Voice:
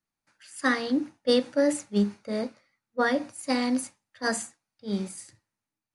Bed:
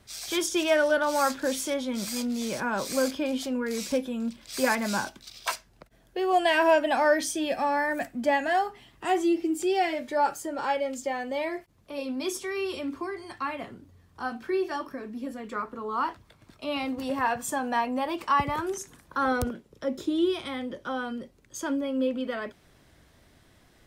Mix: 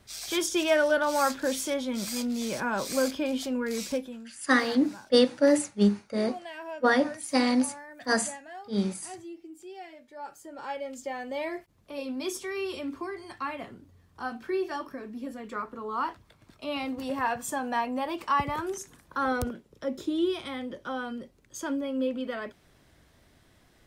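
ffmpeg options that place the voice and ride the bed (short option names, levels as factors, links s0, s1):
-filter_complex "[0:a]adelay=3850,volume=1.26[s0];[1:a]volume=6.31,afade=t=out:st=3.8:d=0.48:silence=0.125893,afade=t=in:st=10.16:d=1.37:silence=0.149624[s1];[s0][s1]amix=inputs=2:normalize=0"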